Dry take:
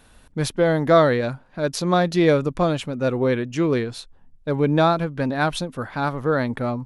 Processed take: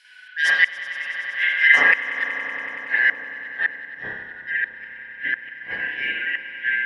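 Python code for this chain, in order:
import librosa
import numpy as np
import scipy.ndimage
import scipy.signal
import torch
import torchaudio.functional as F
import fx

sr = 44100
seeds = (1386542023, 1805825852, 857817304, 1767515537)

p1 = fx.band_shuffle(x, sr, order='4123')
p2 = fx.rev_spring(p1, sr, rt60_s=1.1, pass_ms=(30, 37), chirp_ms=65, drr_db=-9.5)
p3 = fx.gate_flip(p2, sr, shuts_db=-3.0, range_db=-32)
p4 = fx.high_shelf(p3, sr, hz=5000.0, db=-6.5)
p5 = p4 + fx.echo_swell(p4, sr, ms=94, loudest=5, wet_db=-17.0, dry=0)
p6 = fx.filter_sweep_bandpass(p5, sr, from_hz=4300.0, to_hz=370.0, start_s=0.34, end_s=4.1, q=0.71)
p7 = fx.dynamic_eq(p6, sr, hz=450.0, q=0.9, threshold_db=-41.0, ratio=4.0, max_db=4)
y = p7 * 10.0 ** (2.5 / 20.0)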